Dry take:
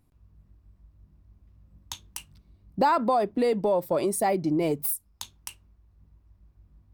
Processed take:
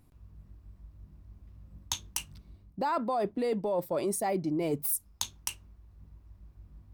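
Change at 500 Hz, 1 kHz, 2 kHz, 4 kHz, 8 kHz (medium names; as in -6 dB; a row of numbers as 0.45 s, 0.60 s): -6.0 dB, -7.5 dB, -6.0 dB, +1.0 dB, +0.5 dB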